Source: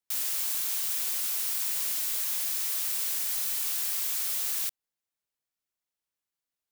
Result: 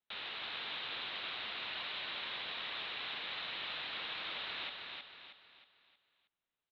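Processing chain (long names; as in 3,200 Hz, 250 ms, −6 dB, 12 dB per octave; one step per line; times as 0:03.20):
Chebyshev low-pass filter 3,900 Hz, order 6
repeating echo 316 ms, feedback 41%, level −4 dB
level +1.5 dB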